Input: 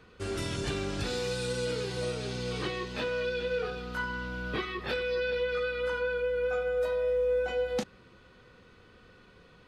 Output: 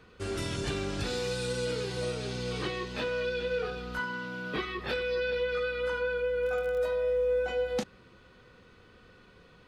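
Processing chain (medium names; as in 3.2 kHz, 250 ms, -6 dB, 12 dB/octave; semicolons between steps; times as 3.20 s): 3.99–4.56 s: high-pass 130 Hz 24 dB/octave; 6.39–6.86 s: crackle 38 per s -> 99 per s -36 dBFS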